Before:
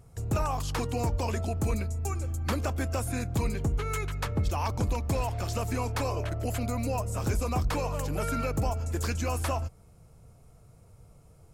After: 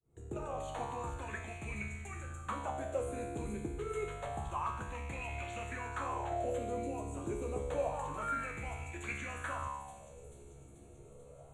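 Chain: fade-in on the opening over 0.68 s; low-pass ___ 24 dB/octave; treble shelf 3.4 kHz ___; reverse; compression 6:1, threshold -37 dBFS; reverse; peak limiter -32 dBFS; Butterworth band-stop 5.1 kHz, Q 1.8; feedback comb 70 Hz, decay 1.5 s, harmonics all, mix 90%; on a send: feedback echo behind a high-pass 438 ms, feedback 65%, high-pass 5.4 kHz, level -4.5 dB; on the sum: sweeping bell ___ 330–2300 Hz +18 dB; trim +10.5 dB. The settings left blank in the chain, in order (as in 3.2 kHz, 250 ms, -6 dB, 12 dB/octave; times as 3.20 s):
8.4 kHz, +3.5 dB, 0.28 Hz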